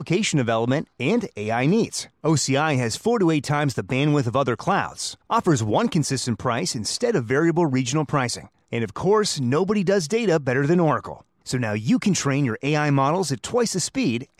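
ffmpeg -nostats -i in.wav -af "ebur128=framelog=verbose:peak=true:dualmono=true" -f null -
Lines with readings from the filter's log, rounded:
Integrated loudness:
  I:         -19.1 LUFS
  Threshold: -29.2 LUFS
Loudness range:
  LRA:         1.0 LU
  Threshold: -39.2 LUFS
  LRA low:   -19.7 LUFS
  LRA high:  -18.7 LUFS
True peak:
  Peak:       -7.9 dBFS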